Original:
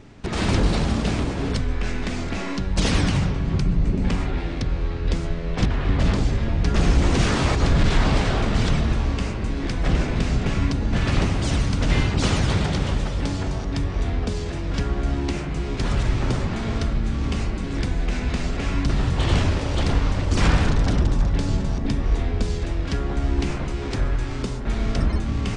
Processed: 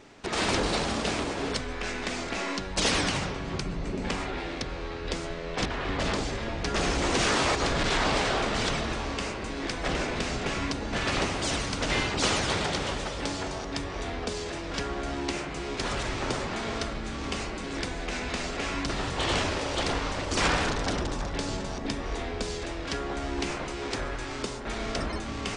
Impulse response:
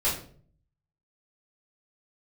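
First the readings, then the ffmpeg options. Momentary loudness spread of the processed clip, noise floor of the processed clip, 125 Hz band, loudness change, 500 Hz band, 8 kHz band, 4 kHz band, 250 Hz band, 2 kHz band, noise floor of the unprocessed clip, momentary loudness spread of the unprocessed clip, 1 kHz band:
8 LU, −36 dBFS, −14.0 dB, −6.0 dB, −2.0 dB, +2.0 dB, +1.0 dB, −7.5 dB, 0.0 dB, −28 dBFS, 7 LU, 0.0 dB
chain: -af "bass=frequency=250:gain=-15,treble=frequency=4000:gain=2"

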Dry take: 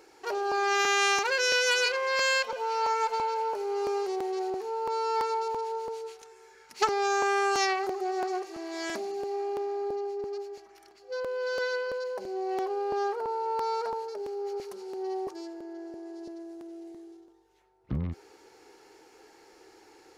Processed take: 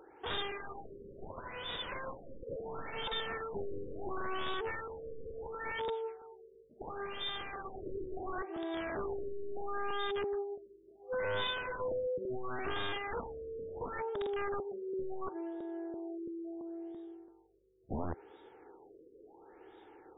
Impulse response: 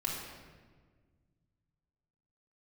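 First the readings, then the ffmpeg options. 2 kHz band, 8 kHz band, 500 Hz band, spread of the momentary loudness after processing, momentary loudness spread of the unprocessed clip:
−12.0 dB, below −40 dB, −8.0 dB, 19 LU, 17 LU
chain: -af "aeval=exprs='(mod(29.9*val(0)+1,2)-1)/29.9':channel_layout=same,highshelf=frequency=3500:width_type=q:width=3:gain=10,afftfilt=real='re*lt(b*sr/1024,540*pow(3800/540,0.5+0.5*sin(2*PI*0.72*pts/sr)))':imag='im*lt(b*sr/1024,540*pow(3800/540,0.5+0.5*sin(2*PI*0.72*pts/sr)))':win_size=1024:overlap=0.75"

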